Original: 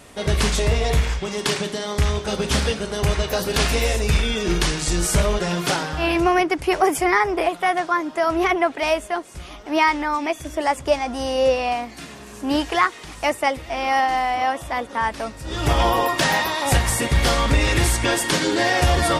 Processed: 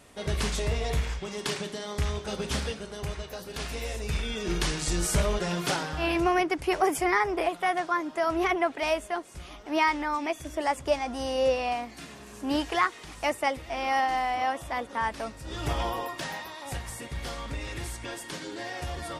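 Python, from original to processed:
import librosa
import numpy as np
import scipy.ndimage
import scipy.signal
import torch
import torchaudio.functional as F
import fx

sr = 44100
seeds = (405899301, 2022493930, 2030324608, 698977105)

y = fx.gain(x, sr, db=fx.line((2.47, -9.0), (3.44, -17.0), (4.75, -6.5), (15.31, -6.5), (16.41, -17.5)))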